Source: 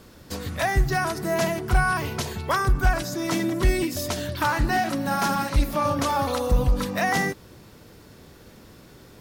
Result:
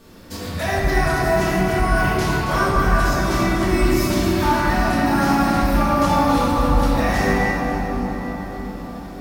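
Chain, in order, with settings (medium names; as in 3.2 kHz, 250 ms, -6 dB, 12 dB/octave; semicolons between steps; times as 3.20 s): peak limiter -17 dBFS, peak gain reduction 6 dB; two-band feedback delay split 1.4 kHz, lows 629 ms, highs 273 ms, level -8.5 dB; reverberation RT60 4.0 s, pre-delay 3 ms, DRR -9.5 dB; trim -3 dB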